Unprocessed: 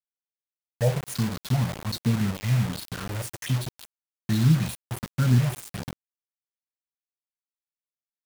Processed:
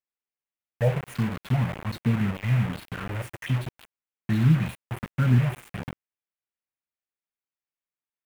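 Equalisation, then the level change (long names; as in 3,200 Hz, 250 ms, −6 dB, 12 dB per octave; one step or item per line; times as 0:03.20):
high shelf with overshoot 3,400 Hz −10.5 dB, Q 1.5
0.0 dB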